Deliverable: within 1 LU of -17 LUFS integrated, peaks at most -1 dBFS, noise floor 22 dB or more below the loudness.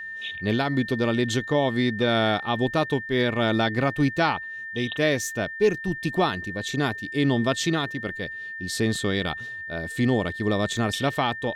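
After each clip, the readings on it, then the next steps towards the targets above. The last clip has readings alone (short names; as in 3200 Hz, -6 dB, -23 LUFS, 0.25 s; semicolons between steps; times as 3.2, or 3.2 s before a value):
dropouts 1; longest dropout 1.3 ms; steady tone 1800 Hz; tone level -33 dBFS; loudness -25.0 LUFS; peak -10.0 dBFS; loudness target -17.0 LUFS
-> interpolate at 10.77, 1.3 ms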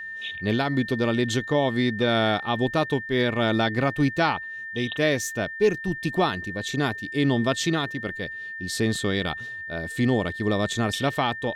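dropouts 0; steady tone 1800 Hz; tone level -33 dBFS
-> notch 1800 Hz, Q 30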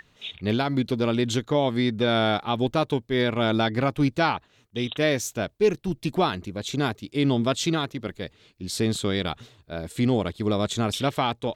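steady tone none; loudness -25.0 LUFS; peak -10.0 dBFS; loudness target -17.0 LUFS
-> gain +8 dB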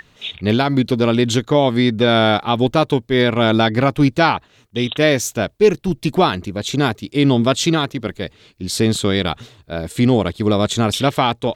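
loudness -17.0 LUFS; peak -2.0 dBFS; noise floor -54 dBFS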